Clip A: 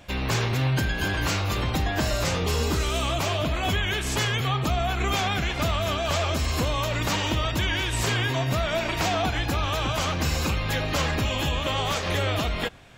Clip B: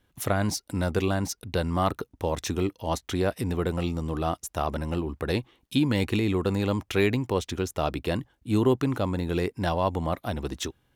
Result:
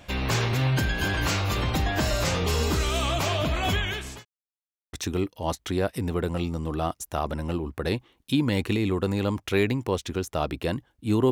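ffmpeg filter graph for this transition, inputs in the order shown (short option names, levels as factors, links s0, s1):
-filter_complex "[0:a]apad=whole_dur=11.31,atrim=end=11.31,asplit=2[s0][s1];[s0]atrim=end=4.25,asetpts=PTS-STARTPTS,afade=t=out:st=3.73:d=0.52[s2];[s1]atrim=start=4.25:end=4.93,asetpts=PTS-STARTPTS,volume=0[s3];[1:a]atrim=start=2.36:end=8.74,asetpts=PTS-STARTPTS,afade=t=in:d=0.004:c=hsin[s4];[s2][s3][s4]concat=n=3:v=0:a=1"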